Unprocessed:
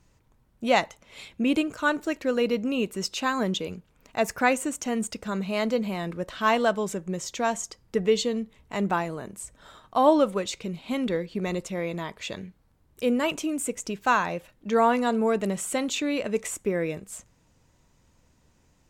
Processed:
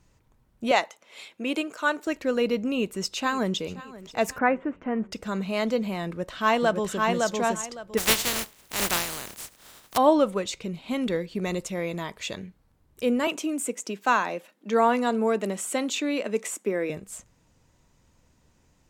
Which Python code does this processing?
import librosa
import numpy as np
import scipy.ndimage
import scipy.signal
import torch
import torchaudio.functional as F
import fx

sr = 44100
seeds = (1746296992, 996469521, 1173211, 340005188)

y = fx.highpass(x, sr, hz=370.0, slope=12, at=(0.71, 2.07))
y = fx.echo_throw(y, sr, start_s=2.71, length_s=1.05, ms=530, feedback_pct=55, wet_db=-17.5)
y = fx.lowpass(y, sr, hz=2000.0, slope=24, at=(4.38, 5.12))
y = fx.echo_throw(y, sr, start_s=6.06, length_s=0.99, ms=560, feedback_pct=20, wet_db=-2.5)
y = fx.spec_flatten(y, sr, power=0.22, at=(7.97, 9.96), fade=0.02)
y = fx.high_shelf(y, sr, hz=4800.0, db=5.5, at=(11.01, 12.36))
y = fx.steep_highpass(y, sr, hz=200.0, slope=36, at=(13.27, 16.9))